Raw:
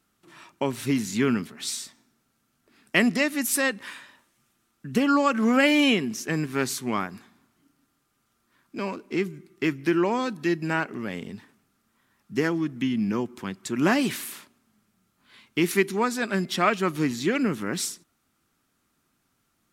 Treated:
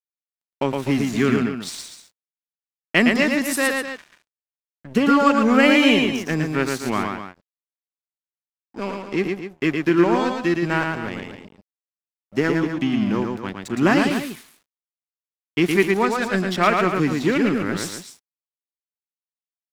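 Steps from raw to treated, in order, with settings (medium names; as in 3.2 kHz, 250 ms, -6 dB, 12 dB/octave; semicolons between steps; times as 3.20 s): 7.13–8.82 s: peaking EQ 2.7 kHz -9.5 dB 1.2 oct; crossover distortion -37.5 dBFS; treble shelf 6.5 kHz -9 dB; loudspeakers at several distances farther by 39 m -4 dB, 86 m -11 dB; trim +5 dB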